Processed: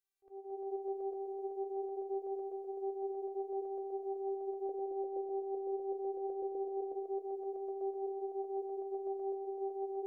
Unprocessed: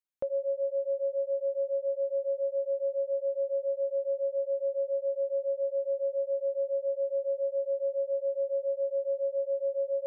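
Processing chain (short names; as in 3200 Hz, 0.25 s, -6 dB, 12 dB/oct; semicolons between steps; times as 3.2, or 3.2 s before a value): reverse delay 0.126 s, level -8 dB; 4.69–6.92 resonant low shelf 580 Hz +12.5 dB, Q 3; limiter -29 dBFS, peak gain reduction 16 dB; auto swell 0.447 s; flange 1.4 Hz, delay 8.9 ms, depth 3.9 ms, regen +55%; robotiser 389 Hz; split-band echo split 510 Hz, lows 0.219 s, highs 0.167 s, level -9 dB; gain +6.5 dB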